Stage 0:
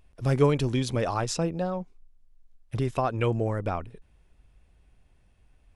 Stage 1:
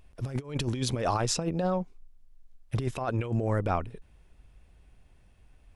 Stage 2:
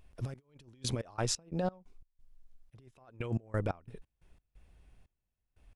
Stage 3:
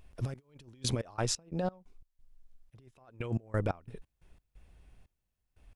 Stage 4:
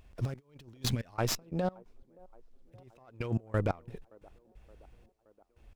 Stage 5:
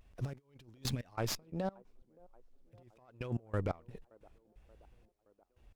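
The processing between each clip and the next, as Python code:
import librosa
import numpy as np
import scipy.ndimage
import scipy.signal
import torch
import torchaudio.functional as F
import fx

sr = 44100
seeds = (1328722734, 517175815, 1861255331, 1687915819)

y1 = fx.over_compress(x, sr, threshold_db=-28.0, ratio=-0.5)
y2 = fx.step_gate(y1, sr, bpm=89, pattern='xx...x.x.x.x.x', floor_db=-24.0, edge_ms=4.5)
y2 = y2 * librosa.db_to_amplitude(-3.5)
y3 = fx.rider(y2, sr, range_db=10, speed_s=0.5)
y3 = y3 * librosa.db_to_amplitude(3.0)
y4 = fx.spec_box(y3, sr, start_s=0.86, length_s=0.27, low_hz=270.0, high_hz=1400.0, gain_db=-9)
y4 = fx.echo_wet_bandpass(y4, sr, ms=572, feedback_pct=65, hz=560.0, wet_db=-23.5)
y4 = fx.running_max(y4, sr, window=3)
y4 = y4 * librosa.db_to_amplitude(1.5)
y5 = fx.vibrato(y4, sr, rate_hz=1.3, depth_cents=86.0)
y5 = y5 * librosa.db_to_amplitude(-5.0)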